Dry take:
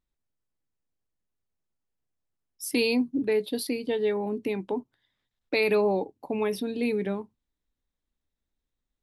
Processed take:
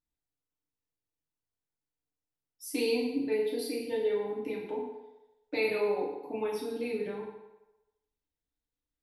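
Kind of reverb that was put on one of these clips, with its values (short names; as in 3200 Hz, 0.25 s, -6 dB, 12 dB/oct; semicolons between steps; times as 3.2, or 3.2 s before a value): FDN reverb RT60 1 s, low-frequency decay 0.7×, high-frequency decay 0.8×, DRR -6 dB; gain -12.5 dB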